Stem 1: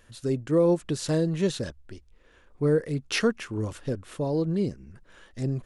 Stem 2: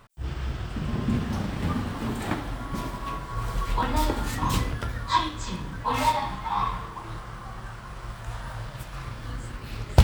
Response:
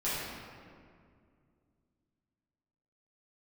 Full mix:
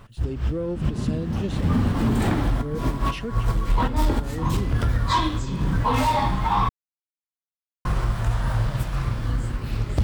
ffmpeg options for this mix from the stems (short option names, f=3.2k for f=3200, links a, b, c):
-filter_complex "[0:a]equalizer=f=2.9k:w=2.5:g=11.5,asoftclip=type=tanh:threshold=-14.5dB,volume=-10.5dB,asplit=2[a][b];[1:a]dynaudnorm=f=360:g=9:m=11dB,asoftclip=type=tanh:threshold=-11.5dB,volume=1.5dB,asplit=3[c][d][e];[c]atrim=end=6.69,asetpts=PTS-STARTPTS,afade=t=out:st=6.686:d=0.004:c=hsin[f];[d]atrim=start=6.69:end=7.85,asetpts=PTS-STARTPTS,volume=0[g];[e]atrim=start=7.85,asetpts=PTS-STARTPTS,afade=t=in:d=0.004:c=hsin[h];[f][g][h]concat=n=3:v=0:a=1[i];[b]apad=whole_len=442478[j];[i][j]sidechaincompress=threshold=-49dB:ratio=5:attack=21:release=108[k];[a][k]amix=inputs=2:normalize=0,lowshelf=f=430:g=8.5,alimiter=limit=-13dB:level=0:latency=1:release=299"